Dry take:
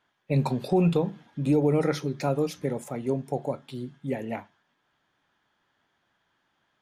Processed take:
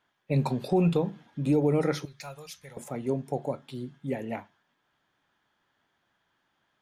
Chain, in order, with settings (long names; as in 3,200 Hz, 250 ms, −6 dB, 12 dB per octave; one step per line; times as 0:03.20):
0:02.05–0:02.77: guitar amp tone stack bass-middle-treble 10-0-10
level −1.5 dB